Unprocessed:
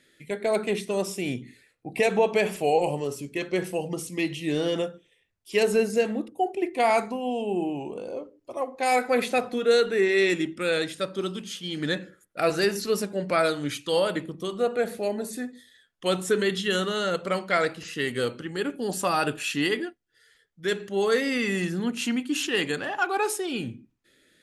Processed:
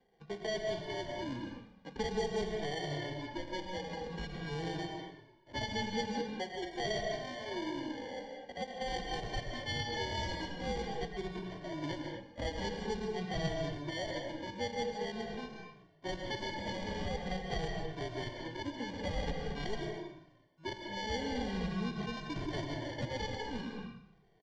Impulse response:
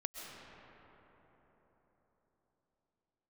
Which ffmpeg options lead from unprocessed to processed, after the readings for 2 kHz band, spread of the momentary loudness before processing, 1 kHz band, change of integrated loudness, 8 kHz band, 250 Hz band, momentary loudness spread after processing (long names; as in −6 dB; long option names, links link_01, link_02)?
−12.5 dB, 10 LU, −11.5 dB, −12.5 dB, −15.5 dB, −11.0 dB, 8 LU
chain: -filter_complex "[0:a]asplit=7[link_01][link_02][link_03][link_04][link_05][link_06][link_07];[link_02]adelay=93,afreqshift=-30,volume=-14.5dB[link_08];[link_03]adelay=186,afreqshift=-60,volume=-19.5dB[link_09];[link_04]adelay=279,afreqshift=-90,volume=-24.6dB[link_10];[link_05]adelay=372,afreqshift=-120,volume=-29.6dB[link_11];[link_06]adelay=465,afreqshift=-150,volume=-34.6dB[link_12];[link_07]adelay=558,afreqshift=-180,volume=-39.7dB[link_13];[link_01][link_08][link_09][link_10][link_11][link_12][link_13]amix=inputs=7:normalize=0,acrusher=samples=34:mix=1:aa=0.000001,lowpass=frequency=5000:width=0.5412,lowpass=frequency=5000:width=1.3066[link_14];[1:a]atrim=start_sample=2205,afade=type=out:start_time=0.31:duration=0.01,atrim=end_sample=14112[link_15];[link_14][link_15]afir=irnorm=-1:irlink=0,acrossover=split=170|3000[link_16][link_17][link_18];[link_17]acompressor=threshold=-34dB:ratio=2[link_19];[link_16][link_19][link_18]amix=inputs=3:normalize=0,asplit=2[link_20][link_21];[link_21]adelay=2.1,afreqshift=-0.46[link_22];[link_20][link_22]amix=inputs=2:normalize=1,volume=-3dB"